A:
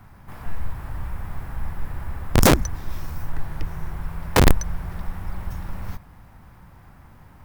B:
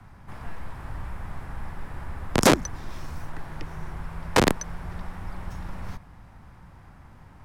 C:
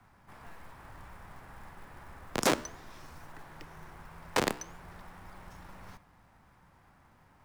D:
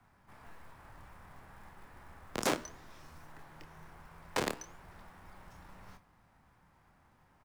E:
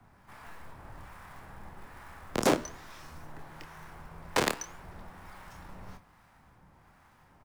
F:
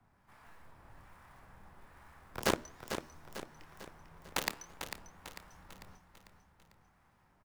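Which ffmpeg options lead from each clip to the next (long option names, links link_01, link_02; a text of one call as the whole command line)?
ffmpeg -i in.wav -filter_complex "[0:a]lowpass=9400,acrossover=split=160|550|2100[link_01][link_02][link_03][link_04];[link_01]acompressor=threshold=-29dB:ratio=6[link_05];[link_05][link_02][link_03][link_04]amix=inputs=4:normalize=0,volume=-1dB" out.wav
ffmpeg -i in.wav -af "lowshelf=frequency=180:gain=-11,flanger=delay=8.2:depth=7.9:regen=-89:speed=1:shape=triangular,acrusher=bits=5:mode=log:mix=0:aa=0.000001,volume=-3dB" out.wav
ffmpeg -i in.wav -filter_complex "[0:a]asplit=2[link_01][link_02];[link_02]adelay=26,volume=-9dB[link_03];[link_01][link_03]amix=inputs=2:normalize=0,volume=-5dB" out.wav
ffmpeg -i in.wav -filter_complex "[0:a]acrossover=split=810[link_01][link_02];[link_01]aeval=exprs='val(0)*(1-0.5/2+0.5/2*cos(2*PI*1.2*n/s))':channel_layout=same[link_03];[link_02]aeval=exprs='val(0)*(1-0.5/2-0.5/2*cos(2*PI*1.2*n/s))':channel_layout=same[link_04];[link_03][link_04]amix=inputs=2:normalize=0,volume=8.5dB" out.wav
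ffmpeg -i in.wav -filter_complex "[0:a]aeval=exprs='0.299*(cos(1*acos(clip(val(0)/0.299,-1,1)))-cos(1*PI/2))+0.119*(cos(3*acos(clip(val(0)/0.299,-1,1)))-cos(3*PI/2))+0.00473*(cos(5*acos(clip(val(0)/0.299,-1,1)))-cos(5*PI/2))':channel_layout=same,asoftclip=type=tanh:threshold=-23.5dB,asplit=2[link_01][link_02];[link_02]aecho=0:1:447|894|1341|1788|2235:0.376|0.18|0.0866|0.0416|0.02[link_03];[link_01][link_03]amix=inputs=2:normalize=0,volume=9dB" out.wav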